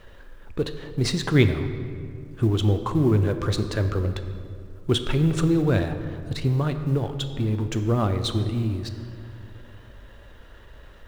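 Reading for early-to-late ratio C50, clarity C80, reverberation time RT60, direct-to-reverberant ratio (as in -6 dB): 9.5 dB, 10.5 dB, 2.3 s, 8.0 dB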